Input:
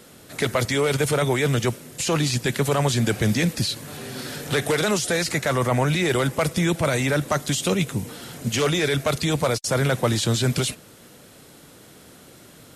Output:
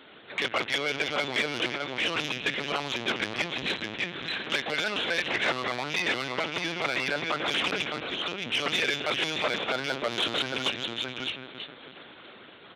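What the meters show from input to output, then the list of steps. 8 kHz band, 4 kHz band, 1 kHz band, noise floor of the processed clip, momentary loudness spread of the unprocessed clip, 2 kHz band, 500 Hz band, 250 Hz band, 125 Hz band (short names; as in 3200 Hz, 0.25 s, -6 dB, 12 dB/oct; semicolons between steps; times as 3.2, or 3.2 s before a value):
-15.0 dB, 0.0 dB, -4.5 dB, -49 dBFS, 7 LU, 0.0 dB, -9.5 dB, -12.0 dB, -20.5 dB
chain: reverse delay 0.197 s, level -10 dB; bell 440 Hz -6.5 dB 1.8 oct; on a send: echo with dull and thin repeats by turns 0.161 s, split 1300 Hz, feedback 69%, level -11 dB; on the sum: dynamic EQ 2800 Hz, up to +7 dB, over -43 dBFS, Q 2; echo 0.616 s -6 dB; LPC vocoder at 8 kHz pitch kept; in parallel at +0.5 dB: compressor 4:1, threshold -34 dBFS, peak gain reduction 15.5 dB; on the sum: soft clip -17 dBFS, distortion -10 dB; HPF 320 Hz 12 dB/oct; gain -1 dB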